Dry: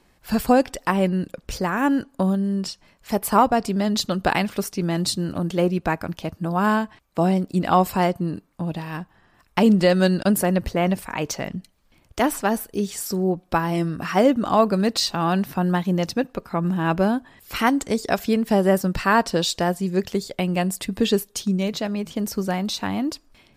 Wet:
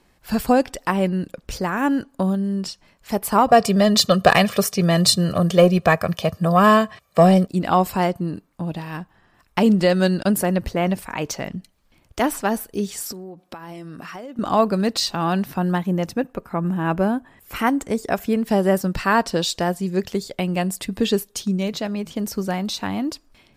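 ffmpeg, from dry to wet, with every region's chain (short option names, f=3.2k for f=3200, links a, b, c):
-filter_complex "[0:a]asettb=1/sr,asplit=3[a][b][c];[a]atrim=end=3.484[d];[b]atrim=start=3.48:end=7.47,asetpts=PTS-STARTPTS,afade=t=in:d=0.004:c=qsin,afade=t=out:st=3.986:d=0.004:c=qsin,highpass=110,acontrast=67,aecho=1:1:1.7:0.73,atrim=end_sample=175959[e];[c]atrim=start=7.466[f];[d][e]acrossfade=d=0.004:c1=hsin:c2=qsin[g];[g][f]acrossfade=d=0.004:c1=qsin:c2=hsin,asettb=1/sr,asplit=3[h][i][j];[h]atrim=end=13.124[k];[i]atrim=start=13.12:end=14.39,asetpts=PTS-STARTPTS,afade=t=in:d=0.004:c=qsin,afade=t=out:st=1.266:d=0.004:c=qsin,highpass=f=230:p=1,acompressor=threshold=-32dB:ratio=10:attack=3.2:release=140:knee=1:detection=peak[l];[j]atrim=start=14.386[m];[k][l]acrossfade=d=0.004:c1=hsin:c2=qsin[n];[n][m]acrossfade=d=0.004:c1=qsin:c2=hsin,asettb=1/sr,asplit=3[o][p][q];[o]atrim=end=15.784[r];[p]atrim=start=15.78:end=18.37,asetpts=PTS-STARTPTS,afade=t=in:d=0.004:c=qsin,afade=t=out:st=2.586:d=0.004:c=qsin,deesser=0.4,equalizer=f=4.4k:t=o:w=1.1:g=-8.5[s];[q]atrim=start=18.366[t];[r][s]acrossfade=d=0.004:c1=hsin:c2=qsin[u];[u][t]acrossfade=d=0.004:c1=qsin:c2=hsin"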